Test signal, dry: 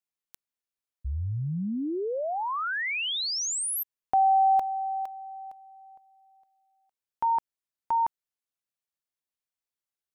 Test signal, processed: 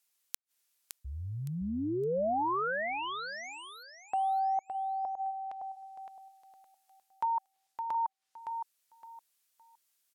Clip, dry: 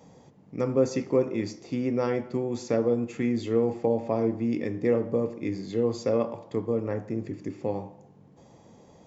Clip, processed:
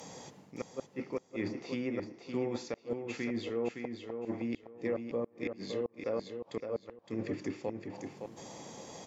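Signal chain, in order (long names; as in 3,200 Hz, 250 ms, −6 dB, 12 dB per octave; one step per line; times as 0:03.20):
reversed playback
downward compressor 12 to 1, threshold −34 dBFS
reversed playback
spectral tilt +3 dB per octave
treble cut that deepens with the level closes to 990 Hz, closed at −35 dBFS
gate with flip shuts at −32 dBFS, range −38 dB
repeating echo 564 ms, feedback 23%, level −6.5 dB
level +8 dB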